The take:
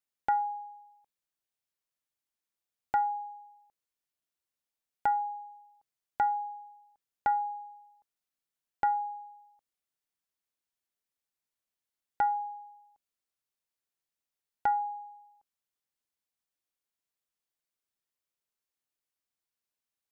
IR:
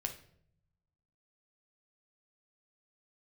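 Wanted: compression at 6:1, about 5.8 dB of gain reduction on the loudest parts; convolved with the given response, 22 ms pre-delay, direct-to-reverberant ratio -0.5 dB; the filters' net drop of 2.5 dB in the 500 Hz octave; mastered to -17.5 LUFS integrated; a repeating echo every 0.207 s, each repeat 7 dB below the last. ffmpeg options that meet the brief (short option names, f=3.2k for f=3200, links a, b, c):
-filter_complex "[0:a]equalizer=f=500:t=o:g=-3.5,acompressor=threshold=-30dB:ratio=6,aecho=1:1:207|414|621|828|1035:0.447|0.201|0.0905|0.0407|0.0183,asplit=2[a][b];[1:a]atrim=start_sample=2205,adelay=22[c];[b][c]afir=irnorm=-1:irlink=0,volume=0.5dB[d];[a][d]amix=inputs=2:normalize=0,volume=17.5dB"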